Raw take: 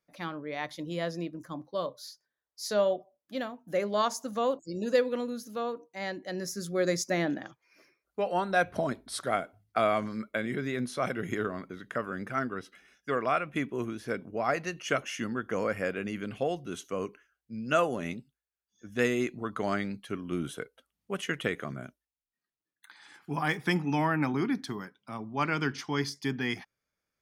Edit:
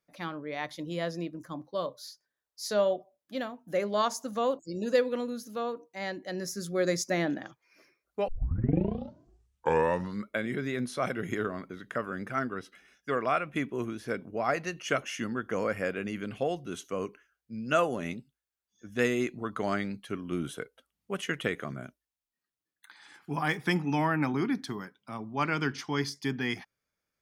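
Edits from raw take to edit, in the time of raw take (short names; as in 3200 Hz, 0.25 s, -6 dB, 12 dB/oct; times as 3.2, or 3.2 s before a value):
8.28 tape start 2.02 s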